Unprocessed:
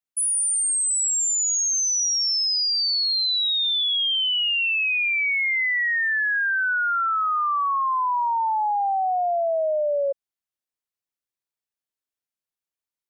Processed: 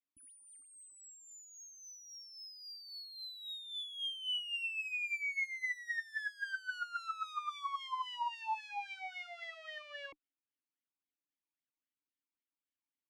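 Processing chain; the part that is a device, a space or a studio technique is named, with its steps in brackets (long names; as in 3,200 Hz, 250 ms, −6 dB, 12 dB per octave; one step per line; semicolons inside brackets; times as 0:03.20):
talk box (tube saturation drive 37 dB, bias 0.75; formant filter swept between two vowels i-u 3.7 Hz)
level +11.5 dB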